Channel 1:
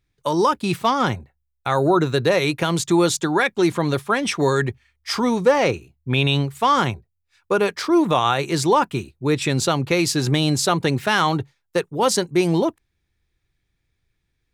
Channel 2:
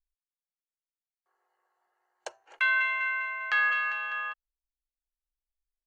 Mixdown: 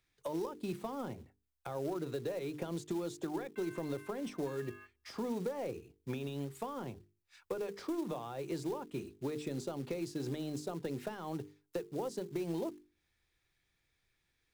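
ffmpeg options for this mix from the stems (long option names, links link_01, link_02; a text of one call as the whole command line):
ffmpeg -i stem1.wav -i stem2.wav -filter_complex "[0:a]lowshelf=frequency=280:gain=-11,acompressor=threshold=-26dB:ratio=6,asoftclip=type=tanh:threshold=-20dB,volume=-0.5dB,asplit=2[link_01][link_02];[1:a]adelay=950,volume=-14dB[link_03];[link_02]apad=whole_len=300717[link_04];[link_03][link_04]sidechaingate=range=-46dB:threshold=-52dB:ratio=16:detection=peak[link_05];[link_01][link_05]amix=inputs=2:normalize=0,bandreject=frequency=50:width_type=h:width=6,bandreject=frequency=100:width_type=h:width=6,bandreject=frequency=150:width_type=h:width=6,bandreject=frequency=200:width_type=h:width=6,bandreject=frequency=250:width_type=h:width=6,bandreject=frequency=300:width_type=h:width=6,bandreject=frequency=350:width_type=h:width=6,bandreject=frequency=400:width_type=h:width=6,bandreject=frequency=450:width_type=h:width=6,acrossover=split=160|600[link_06][link_07][link_08];[link_06]acompressor=threshold=-51dB:ratio=4[link_09];[link_07]acompressor=threshold=-35dB:ratio=4[link_10];[link_08]acompressor=threshold=-55dB:ratio=4[link_11];[link_09][link_10][link_11]amix=inputs=3:normalize=0,acrusher=bits=5:mode=log:mix=0:aa=0.000001" out.wav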